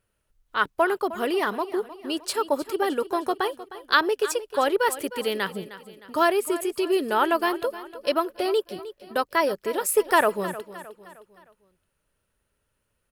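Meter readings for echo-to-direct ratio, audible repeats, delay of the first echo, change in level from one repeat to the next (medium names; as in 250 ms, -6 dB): -14.0 dB, 3, 309 ms, -7.0 dB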